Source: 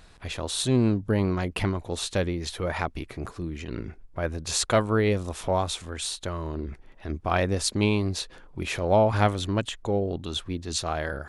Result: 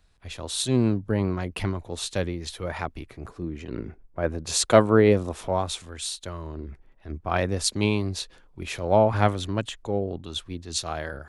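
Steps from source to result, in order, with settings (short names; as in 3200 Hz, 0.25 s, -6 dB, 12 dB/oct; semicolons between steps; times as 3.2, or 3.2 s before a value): 3.28–5.47 bell 390 Hz +5 dB 2.8 oct; three-band expander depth 40%; gain -1 dB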